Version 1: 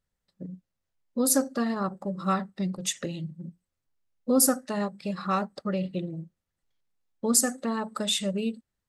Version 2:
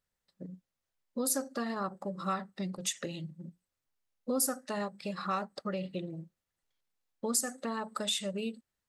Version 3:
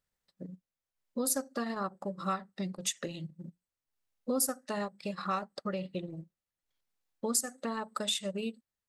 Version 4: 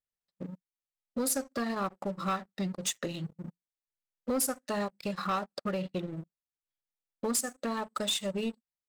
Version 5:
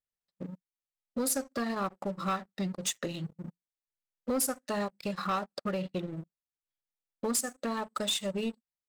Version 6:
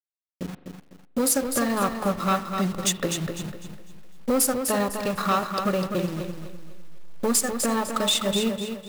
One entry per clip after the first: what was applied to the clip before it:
low shelf 310 Hz -8 dB; compressor 2:1, threshold -33 dBFS, peak gain reduction 9 dB
transient shaper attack +1 dB, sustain -7 dB
sample leveller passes 3; gain -7.5 dB
nothing audible
level-crossing sampler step -42 dBFS; spring tank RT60 1.6 s, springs 40 ms, chirp 40 ms, DRR 14 dB; lo-fi delay 0.251 s, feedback 35%, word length 10-bit, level -6.5 dB; gain +8 dB

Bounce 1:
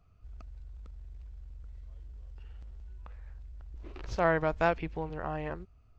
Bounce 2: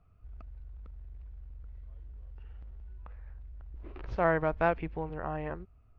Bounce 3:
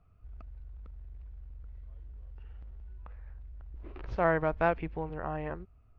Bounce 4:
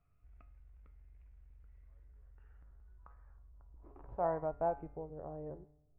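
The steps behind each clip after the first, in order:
LPF 2400 Hz 12 dB/oct
nothing audible
resonator 140 Hz, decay 0.46 s, harmonics all, mix 70%; low-pass sweep 2300 Hz -> 490 Hz, 1.65–5.53; resonator 150 Hz, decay 0.96 s, harmonics all, mix 50%; gain +2.5 dB

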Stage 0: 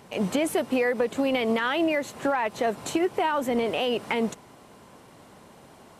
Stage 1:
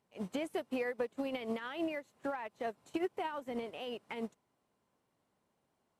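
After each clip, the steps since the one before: upward expander 2.5:1, over -34 dBFS; gain -9 dB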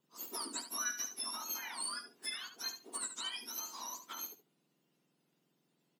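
spectrum mirrored in octaves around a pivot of 1700 Hz; feedback echo 71 ms, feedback 17%, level -9.5 dB; gain +2 dB

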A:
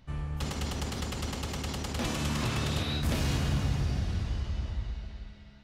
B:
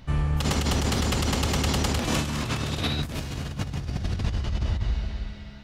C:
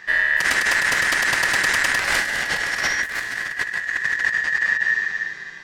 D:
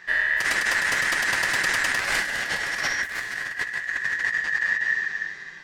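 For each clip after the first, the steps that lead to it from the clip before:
negative-ratio compressor -33 dBFS, ratio -0.5; gain +8 dB
ring modulator 1800 Hz; gain +7.5 dB
flange 1.8 Hz, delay 5.1 ms, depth 7.2 ms, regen -39%

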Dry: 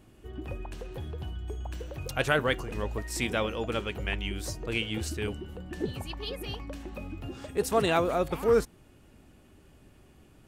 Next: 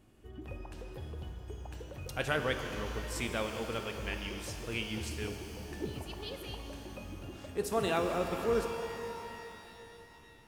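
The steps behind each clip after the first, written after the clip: shimmer reverb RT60 3.4 s, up +12 st, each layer -8 dB, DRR 5 dB; gain -6.5 dB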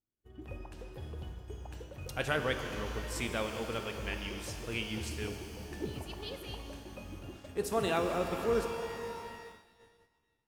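expander -42 dBFS

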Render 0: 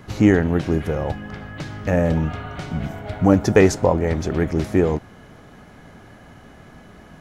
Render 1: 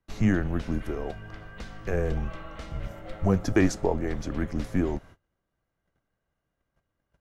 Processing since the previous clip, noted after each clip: gate -39 dBFS, range -28 dB; frequency shift -99 Hz; gain -8 dB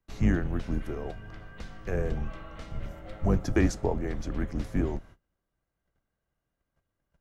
octaver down 2 oct, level 0 dB; gain -3.5 dB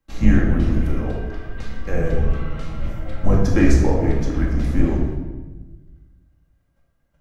shoebox room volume 750 m³, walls mixed, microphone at 2.2 m; gain +3.5 dB

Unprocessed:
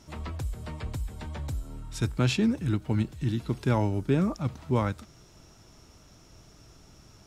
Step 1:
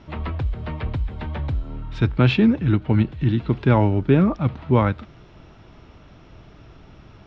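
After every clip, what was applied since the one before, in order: LPF 3400 Hz 24 dB/oct; gain +8.5 dB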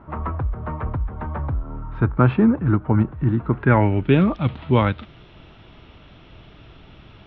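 low-pass sweep 1200 Hz -> 3400 Hz, 3.45–4.19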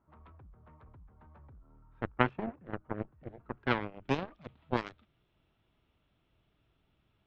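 added harmonics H 3 -9 dB, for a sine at -1.5 dBFS; gain -4 dB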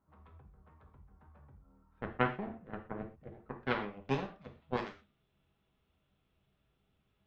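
non-linear reverb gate 0.15 s falling, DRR 2.5 dB; gain -5 dB

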